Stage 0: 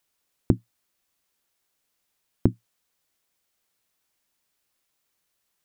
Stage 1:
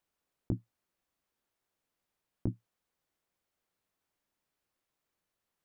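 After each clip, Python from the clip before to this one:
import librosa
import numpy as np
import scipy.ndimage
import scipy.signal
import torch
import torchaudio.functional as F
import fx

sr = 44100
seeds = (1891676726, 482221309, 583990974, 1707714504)

y = fx.high_shelf(x, sr, hz=2200.0, db=-11.0)
y = fx.over_compress(y, sr, threshold_db=-20.0, ratio=-0.5)
y = F.gain(torch.from_numpy(y), -7.0).numpy()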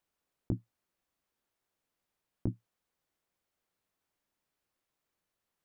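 y = x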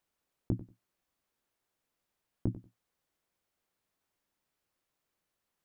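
y = fx.echo_feedback(x, sr, ms=93, feedback_pct=18, wet_db=-15.5)
y = F.gain(torch.from_numpy(y), 1.0).numpy()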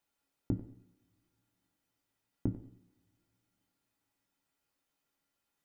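y = fx.comb_fb(x, sr, f0_hz=280.0, decay_s=0.19, harmonics='odd', damping=0.0, mix_pct=80)
y = fx.rev_double_slope(y, sr, seeds[0], early_s=0.72, late_s=3.2, knee_db=-26, drr_db=10.5)
y = F.gain(torch.from_numpy(y), 11.0).numpy()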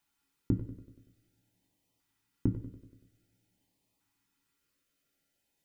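y = fx.echo_feedback(x, sr, ms=95, feedback_pct=57, wet_db=-14.0)
y = fx.filter_lfo_notch(y, sr, shape='saw_up', hz=0.5, low_hz=500.0, high_hz=1600.0, q=1.2)
y = F.gain(torch.from_numpy(y), 4.5).numpy()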